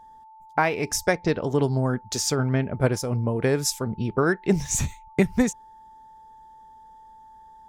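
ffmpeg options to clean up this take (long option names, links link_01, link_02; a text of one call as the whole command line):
ffmpeg -i in.wav -af "bandreject=frequency=880:width=30" out.wav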